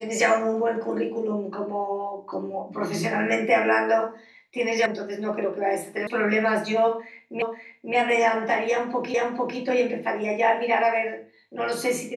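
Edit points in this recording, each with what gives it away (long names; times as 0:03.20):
0:04.86: cut off before it has died away
0:06.07: cut off before it has died away
0:07.42: the same again, the last 0.53 s
0:09.14: the same again, the last 0.45 s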